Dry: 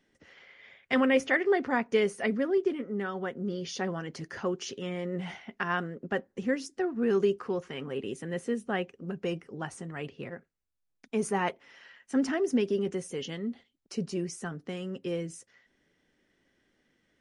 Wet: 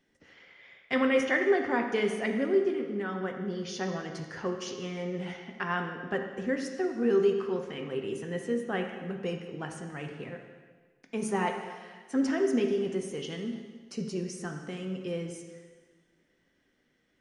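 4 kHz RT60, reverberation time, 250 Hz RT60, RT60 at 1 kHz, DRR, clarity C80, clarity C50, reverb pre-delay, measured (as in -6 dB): 1.4 s, 1.5 s, 1.5 s, 1.5 s, 3.5 dB, 7.0 dB, 5.5 dB, 4 ms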